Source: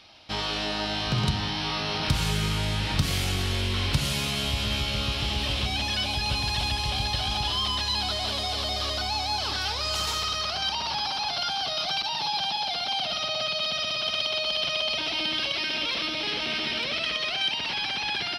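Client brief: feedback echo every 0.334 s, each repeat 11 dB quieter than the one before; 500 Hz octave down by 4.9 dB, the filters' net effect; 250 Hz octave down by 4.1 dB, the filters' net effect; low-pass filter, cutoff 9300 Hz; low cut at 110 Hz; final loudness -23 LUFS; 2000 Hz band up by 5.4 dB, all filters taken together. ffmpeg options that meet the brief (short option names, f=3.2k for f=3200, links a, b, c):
-af "highpass=110,lowpass=9.3k,equalizer=f=250:t=o:g=-4,equalizer=f=500:t=o:g=-6.5,equalizer=f=2k:t=o:g=7.5,aecho=1:1:334|668|1002:0.282|0.0789|0.0221,volume=1dB"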